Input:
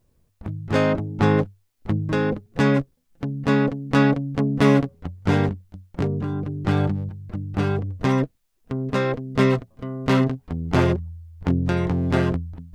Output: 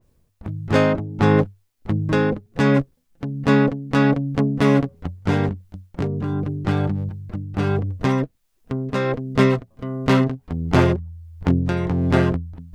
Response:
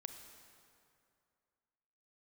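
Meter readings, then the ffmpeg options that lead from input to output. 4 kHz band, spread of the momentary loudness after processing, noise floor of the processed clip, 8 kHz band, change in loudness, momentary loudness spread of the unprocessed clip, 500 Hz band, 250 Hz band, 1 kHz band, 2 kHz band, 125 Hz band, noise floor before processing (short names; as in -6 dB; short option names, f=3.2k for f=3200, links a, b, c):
+1.0 dB, 13 LU, -64 dBFS, n/a, +1.5 dB, 13 LU, +2.0 dB, +1.5 dB, +1.5 dB, +1.5 dB, +1.5 dB, -66 dBFS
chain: -af "tremolo=f=1.4:d=0.37,adynamicequalizer=threshold=0.00891:dfrequency=2800:dqfactor=0.7:tfrequency=2800:tqfactor=0.7:attack=5:release=100:ratio=0.375:range=3:mode=cutabove:tftype=highshelf,volume=3.5dB"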